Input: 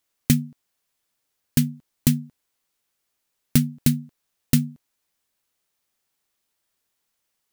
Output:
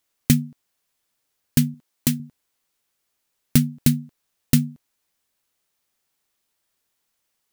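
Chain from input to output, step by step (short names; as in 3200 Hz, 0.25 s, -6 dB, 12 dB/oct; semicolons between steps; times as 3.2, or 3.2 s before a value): 1.74–2.2 low shelf 150 Hz -12 dB; gain +1.5 dB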